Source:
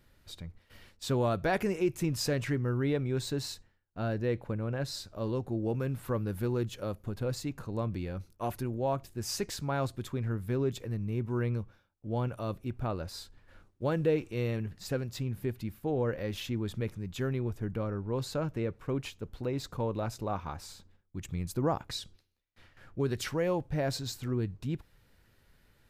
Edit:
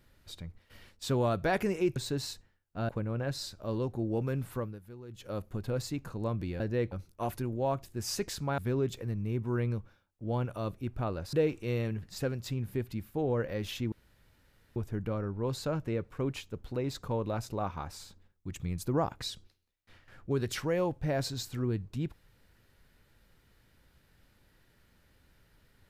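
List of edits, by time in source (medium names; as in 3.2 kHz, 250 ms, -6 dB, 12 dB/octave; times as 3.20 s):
1.96–3.17 s: delete
4.10–4.42 s: move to 8.13 s
6.01–6.93 s: dip -16.5 dB, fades 0.32 s
9.79–10.41 s: delete
13.16–14.02 s: delete
16.61–17.45 s: room tone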